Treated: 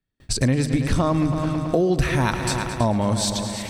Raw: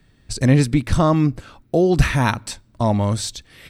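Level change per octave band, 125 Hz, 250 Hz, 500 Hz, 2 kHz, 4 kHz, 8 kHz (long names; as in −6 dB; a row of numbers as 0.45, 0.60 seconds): −3.5, −2.5, −2.5, −2.0, +1.5, +2.0 decibels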